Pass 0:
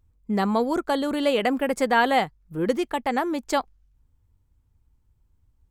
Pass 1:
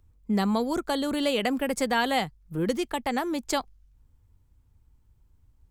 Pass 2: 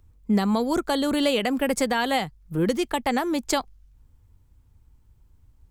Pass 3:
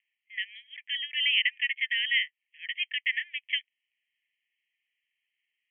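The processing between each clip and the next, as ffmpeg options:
-filter_complex "[0:a]acrossover=split=190|3000[a][b][c];[b]acompressor=threshold=-42dB:ratio=1.5[d];[a][d][c]amix=inputs=3:normalize=0,volume=3dB"
-af "alimiter=limit=-16.5dB:level=0:latency=1:release=188,volume=4.5dB"
-af "asuperpass=centerf=2400:order=20:qfactor=1.7,volume=6.5dB"

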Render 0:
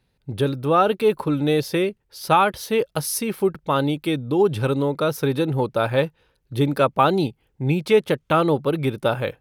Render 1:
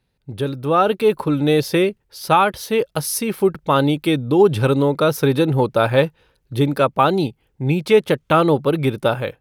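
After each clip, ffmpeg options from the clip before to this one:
-af "dynaudnorm=f=450:g=3:m=11.5dB,volume=-2dB"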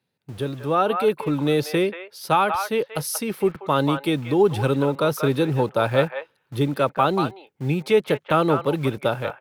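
-filter_complex "[0:a]acrossover=split=110|570|2900[a][b][c][d];[a]acrusher=bits=6:mix=0:aa=0.000001[e];[c]aecho=1:1:185:0.596[f];[e][b][f][d]amix=inputs=4:normalize=0,volume=-4.5dB"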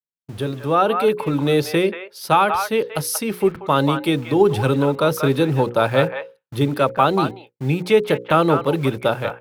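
-af "bandreject=f=60:t=h:w=6,bandreject=f=120:t=h:w=6,bandreject=f=180:t=h:w=6,bandreject=f=240:t=h:w=6,bandreject=f=300:t=h:w=6,bandreject=f=360:t=h:w=6,bandreject=f=420:t=h:w=6,bandreject=f=480:t=h:w=6,bandreject=f=540:t=h:w=6,agate=range=-33dB:threshold=-40dB:ratio=3:detection=peak,volume=3.5dB"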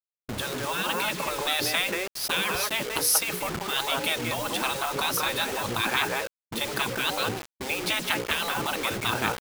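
-af "acrusher=bits=5:mix=0:aa=0.000001,afftfilt=real='re*lt(hypot(re,im),0.224)':imag='im*lt(hypot(re,im),0.224)':win_size=1024:overlap=0.75,volume=3dB"

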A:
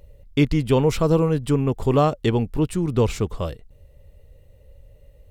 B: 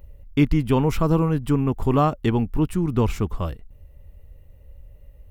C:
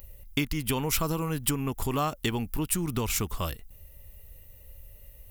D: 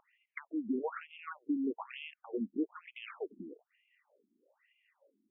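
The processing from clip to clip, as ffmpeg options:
-af "equalizer=f=125:t=o:w=1:g=-5,equalizer=f=500:t=o:w=1:g=-10,equalizer=f=2k:t=o:w=1:g=-3,equalizer=f=4k:t=o:w=1:g=-9,equalizer=f=8k:t=o:w=1:g=-9,volume=4.5dB"
-af "acompressor=threshold=-22dB:ratio=6,crystalizer=i=9.5:c=0,volume=-4.5dB"
-af "asuperstop=centerf=4000:order=4:qfactor=0.93,highshelf=f=4.5k:t=q:w=3:g=-10.5,afftfilt=real='re*between(b*sr/1024,250*pow(2900/250,0.5+0.5*sin(2*PI*1.1*pts/sr))/1.41,250*pow(2900/250,0.5+0.5*sin(2*PI*1.1*pts/sr))*1.41)':imag='im*between(b*sr/1024,250*pow(2900/250,0.5+0.5*sin(2*PI*1.1*pts/sr))/1.41,250*pow(2900/250,0.5+0.5*sin(2*PI*1.1*pts/sr))*1.41)':win_size=1024:overlap=0.75"

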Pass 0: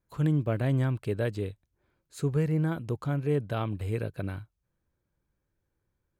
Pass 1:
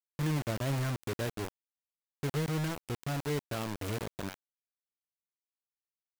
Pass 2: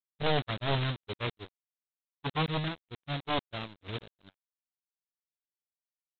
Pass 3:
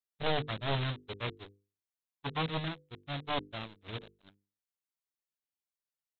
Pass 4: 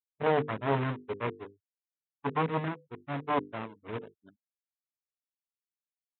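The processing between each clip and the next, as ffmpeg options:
-af "acrusher=bits=4:mix=0:aa=0.000001,volume=-6.5dB"
-af "aresample=8000,aeval=exprs='0.0794*sin(PI/2*3.98*val(0)/0.0794)':c=same,aresample=44100,agate=range=-48dB:threshold=-27dB:ratio=16:detection=peak,volume=2dB"
-af "bandreject=f=50:t=h:w=6,bandreject=f=100:t=h:w=6,bandreject=f=150:t=h:w=6,bandreject=f=200:t=h:w=6,bandreject=f=250:t=h:w=6,bandreject=f=300:t=h:w=6,bandreject=f=350:t=h:w=6,bandreject=f=400:t=h:w=6,bandreject=f=450:t=h:w=6,bandreject=f=500:t=h:w=6,volume=-2.5dB"
-af "afftfilt=real='re*gte(hypot(re,im),0.002)':imag='im*gte(hypot(re,im),0.002)':win_size=1024:overlap=0.75,highpass=120,equalizer=f=260:t=q:w=4:g=6,equalizer=f=430:t=q:w=4:g=7,equalizer=f=990:t=q:w=4:g=6,lowpass=f=2.3k:w=0.5412,lowpass=f=2.3k:w=1.3066,volume=3dB"

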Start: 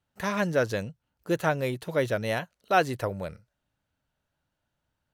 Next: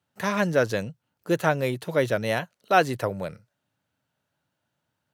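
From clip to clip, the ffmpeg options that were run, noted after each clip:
-af "highpass=f=100:w=0.5412,highpass=f=100:w=1.3066,volume=3dB"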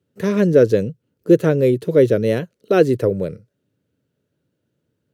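-af "lowshelf=f=590:t=q:w=3:g=10,volume=-1.5dB"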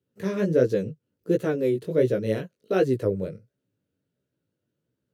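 -af "flanger=delay=15:depth=6.6:speed=1.4,volume=-5dB"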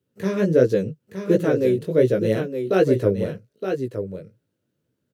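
-af "aecho=1:1:917:0.422,volume=4dB"

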